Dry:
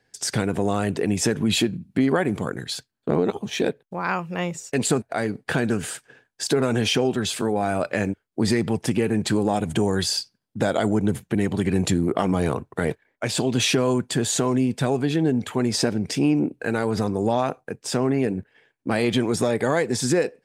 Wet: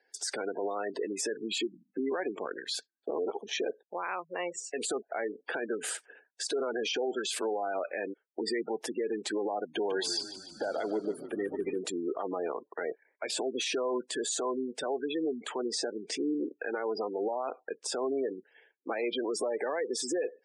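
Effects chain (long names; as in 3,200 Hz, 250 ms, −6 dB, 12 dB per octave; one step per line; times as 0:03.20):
gate on every frequency bin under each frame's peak −20 dB strong
high-pass filter 370 Hz 24 dB per octave
brickwall limiter −21.5 dBFS, peak gain reduction 11 dB
0:09.60–0:11.79: echo with shifted repeats 147 ms, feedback 63%, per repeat −33 Hz, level −13 dB
level −2.5 dB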